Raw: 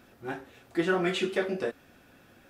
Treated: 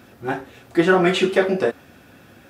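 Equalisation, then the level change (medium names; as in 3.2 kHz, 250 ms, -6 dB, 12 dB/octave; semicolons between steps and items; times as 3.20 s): high-pass 77 Hz; dynamic bell 810 Hz, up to +4 dB, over -41 dBFS, Q 0.85; bass shelf 130 Hz +7 dB; +8.5 dB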